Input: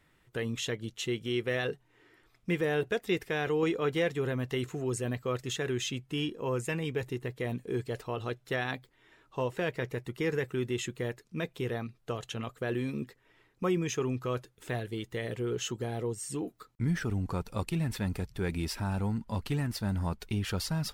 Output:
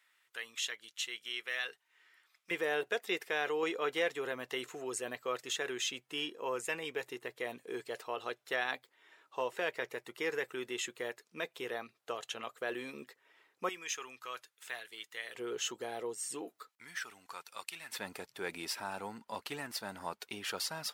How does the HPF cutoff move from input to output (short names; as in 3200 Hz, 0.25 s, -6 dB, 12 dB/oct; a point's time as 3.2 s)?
1400 Hz
from 2.51 s 550 Hz
from 13.69 s 1300 Hz
from 15.35 s 530 Hz
from 16.69 s 1400 Hz
from 17.92 s 540 Hz